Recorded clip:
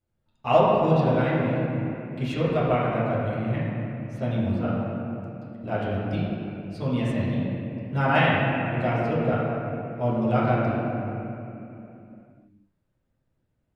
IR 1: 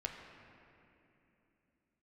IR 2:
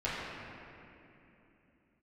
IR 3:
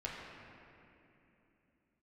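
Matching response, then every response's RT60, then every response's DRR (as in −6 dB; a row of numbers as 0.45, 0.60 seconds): 2; 3.0, 3.0, 3.0 seconds; 1.0, −11.0, −5.0 decibels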